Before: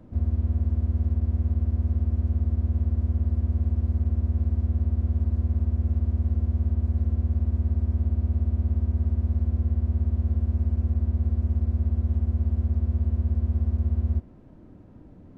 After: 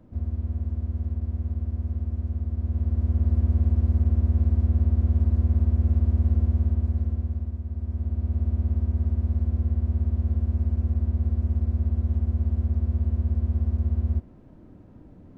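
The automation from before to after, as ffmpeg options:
-af "volume=3.76,afade=t=in:st=2.51:d=0.85:silence=0.446684,afade=t=out:st=6.4:d=1.23:silence=0.266073,afade=t=in:st=7.63:d=0.86:silence=0.375837"

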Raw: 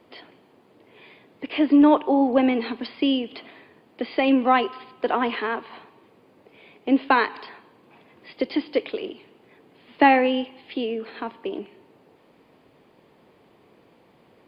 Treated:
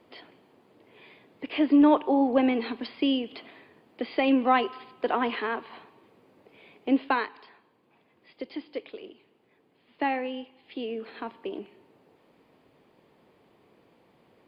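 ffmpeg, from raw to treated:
-af "volume=1.5,afade=t=out:st=6.9:d=0.43:silence=0.375837,afade=t=in:st=10.58:d=0.4:silence=0.446684"

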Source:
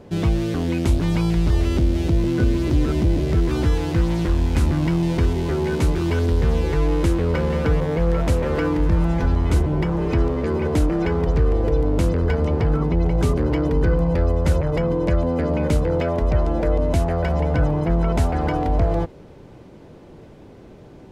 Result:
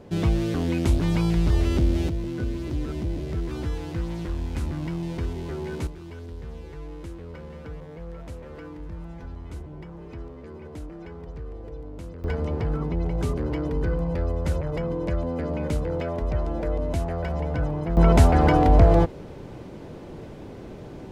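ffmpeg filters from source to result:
-af "asetnsamples=n=441:p=0,asendcmd='2.09 volume volume -10dB;5.87 volume volume -19dB;12.24 volume volume -7dB;17.97 volume volume 4dB',volume=0.75"

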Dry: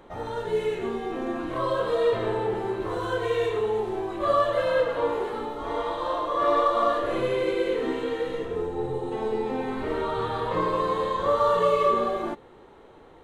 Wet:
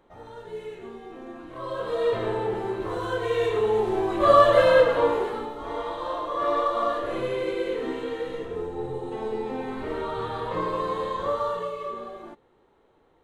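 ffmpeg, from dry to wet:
-af "volume=2.37,afade=t=in:st=1.53:d=0.63:silence=0.316228,afade=t=in:st=3.25:d=1.33:silence=0.398107,afade=t=out:st=4.58:d=0.95:silence=0.316228,afade=t=out:st=11.21:d=0.52:silence=0.334965"

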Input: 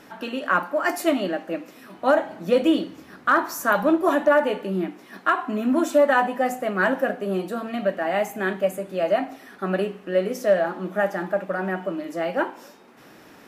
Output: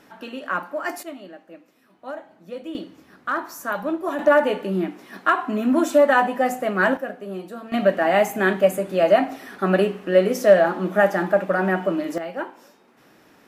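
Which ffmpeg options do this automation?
-af "asetnsamples=n=441:p=0,asendcmd='1.03 volume volume -15dB;2.75 volume volume -6dB;4.19 volume volume 2dB;6.97 volume volume -6.5dB;7.72 volume volume 5.5dB;12.18 volume volume -5.5dB',volume=0.596"

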